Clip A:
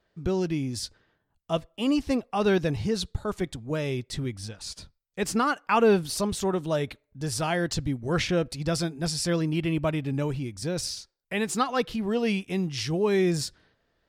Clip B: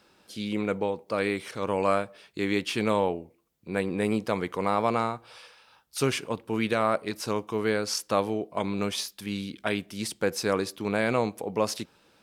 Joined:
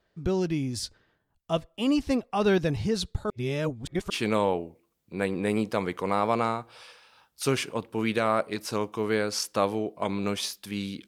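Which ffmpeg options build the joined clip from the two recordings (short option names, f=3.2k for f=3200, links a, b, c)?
-filter_complex "[0:a]apad=whole_dur=11.07,atrim=end=11.07,asplit=2[a][b];[a]atrim=end=3.302[c];[b]atrim=start=3.298:end=4.102,asetpts=PTS-STARTPTS,areverse[d];[1:a]atrim=start=2.648:end=9.62[e];[c][d]acrossfade=d=0.004:c1=hsin:c2=hsin[f];[f][e]acrossfade=d=0.004:c1=hsin:c2=hsin"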